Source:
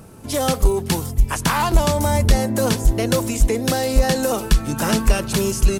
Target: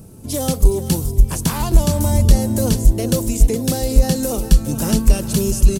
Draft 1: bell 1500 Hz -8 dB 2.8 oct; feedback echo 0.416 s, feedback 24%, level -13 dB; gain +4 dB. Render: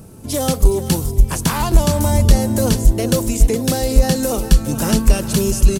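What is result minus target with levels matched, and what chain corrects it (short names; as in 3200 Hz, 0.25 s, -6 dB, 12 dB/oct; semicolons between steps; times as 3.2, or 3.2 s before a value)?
2000 Hz band +4.5 dB
bell 1500 Hz -14 dB 2.8 oct; feedback echo 0.416 s, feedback 24%, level -13 dB; gain +4 dB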